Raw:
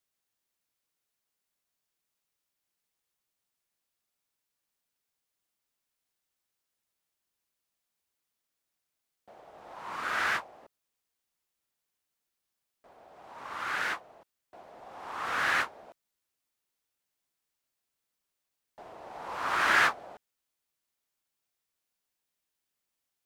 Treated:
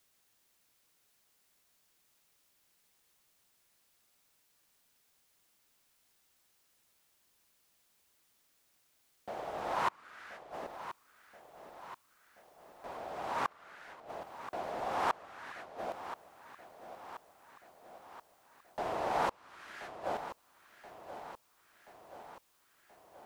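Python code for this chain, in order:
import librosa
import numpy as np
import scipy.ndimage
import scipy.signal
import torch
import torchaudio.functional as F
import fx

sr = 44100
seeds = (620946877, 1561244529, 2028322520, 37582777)

p1 = fx.gate_flip(x, sr, shuts_db=-31.0, range_db=-34)
p2 = fx.peak_eq(p1, sr, hz=1200.0, db=-5.0, octaves=1.9, at=(19.26, 20.02))
p3 = p2 + fx.echo_feedback(p2, sr, ms=1029, feedback_pct=59, wet_db=-12.0, dry=0)
y = F.gain(torch.from_numpy(p3), 12.0).numpy()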